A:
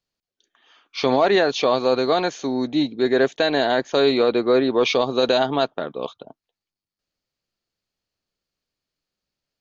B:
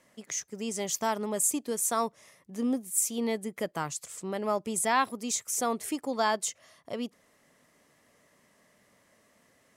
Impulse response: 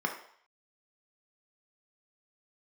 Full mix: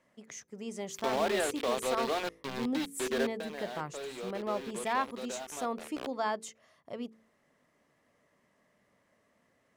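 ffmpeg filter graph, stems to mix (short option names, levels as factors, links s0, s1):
-filter_complex "[0:a]acrossover=split=260 3700:gain=0.141 1 0.178[s0][s1][s2];[s0][s1][s2]amix=inputs=3:normalize=0,acrusher=bits=3:mix=0:aa=0.000001,equalizer=f=3500:t=o:w=1.4:g=7,volume=0.944,afade=t=out:st=3.23:d=0.2:silence=0.316228,afade=t=in:st=5.79:d=0.36:silence=0.251189[s3];[1:a]volume=0.596[s4];[s3][s4]amix=inputs=2:normalize=0,highshelf=f=4000:g=-11.5,bandreject=f=55.63:t=h:w=4,bandreject=f=111.26:t=h:w=4,bandreject=f=166.89:t=h:w=4,bandreject=f=222.52:t=h:w=4,bandreject=f=278.15:t=h:w=4,bandreject=f=333.78:t=h:w=4,bandreject=f=389.41:t=h:w=4,bandreject=f=445.04:t=h:w=4,bandreject=f=500.67:t=h:w=4"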